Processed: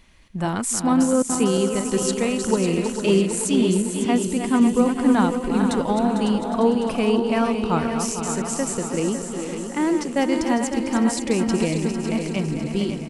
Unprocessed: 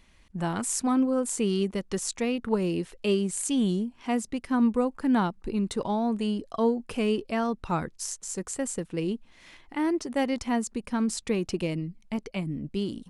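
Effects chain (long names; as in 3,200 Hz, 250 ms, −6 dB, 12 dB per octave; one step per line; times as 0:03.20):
feedback delay that plays each chunk backwards 225 ms, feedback 74%, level −7.5 dB
0:01.22–0:01.92: noise gate with hold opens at −18 dBFS
on a send: repeating echo 552 ms, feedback 48%, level −9 dB
on the sum: level +5 dB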